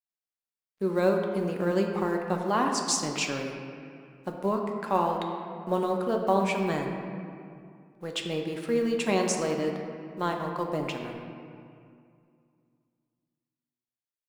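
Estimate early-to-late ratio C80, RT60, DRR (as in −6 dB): 5.0 dB, 2.3 s, 1.5 dB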